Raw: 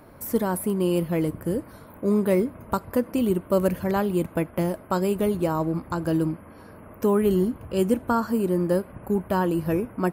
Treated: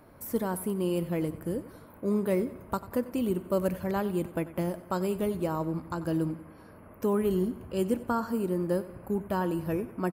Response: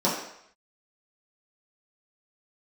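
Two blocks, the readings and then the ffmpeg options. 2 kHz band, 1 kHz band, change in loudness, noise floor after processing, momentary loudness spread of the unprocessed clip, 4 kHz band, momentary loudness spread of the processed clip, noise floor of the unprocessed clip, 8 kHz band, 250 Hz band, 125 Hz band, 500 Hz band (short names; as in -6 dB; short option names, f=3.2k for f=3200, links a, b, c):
-6.0 dB, -6.0 dB, -6.0 dB, -52 dBFS, 6 LU, -6.0 dB, 6 LU, -47 dBFS, -6.0 dB, -6.0 dB, -6.0 dB, -6.0 dB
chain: -af "aecho=1:1:93|186|279|372:0.15|0.0718|0.0345|0.0165,volume=-6dB"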